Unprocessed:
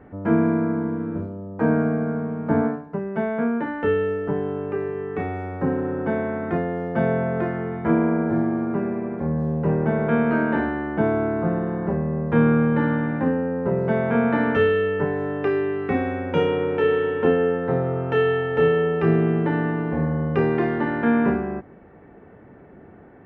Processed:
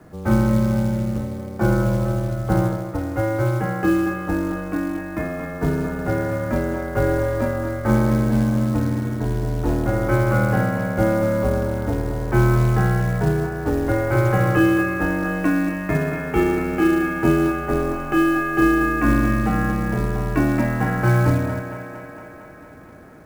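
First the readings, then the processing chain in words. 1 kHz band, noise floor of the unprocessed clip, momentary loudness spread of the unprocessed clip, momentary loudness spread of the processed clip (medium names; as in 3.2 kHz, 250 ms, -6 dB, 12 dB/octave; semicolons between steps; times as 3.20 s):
+2.5 dB, -47 dBFS, 7 LU, 7 LU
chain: bass shelf 75 Hz -7.5 dB; mistuned SSB -110 Hz 150–3000 Hz; thinning echo 229 ms, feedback 74%, high-pass 180 Hz, level -8.5 dB; companded quantiser 6-bit; trim +2.5 dB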